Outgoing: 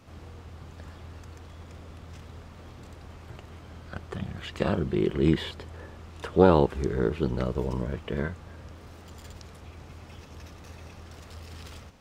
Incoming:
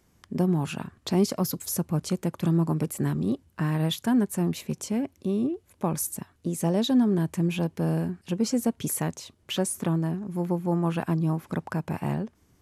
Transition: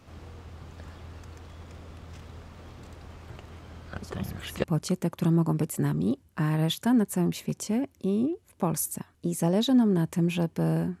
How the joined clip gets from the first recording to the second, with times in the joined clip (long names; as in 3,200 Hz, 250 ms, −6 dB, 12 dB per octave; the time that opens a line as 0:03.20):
outgoing
0:04.02: mix in incoming from 0:01.23 0.62 s −16 dB
0:04.64: continue with incoming from 0:01.85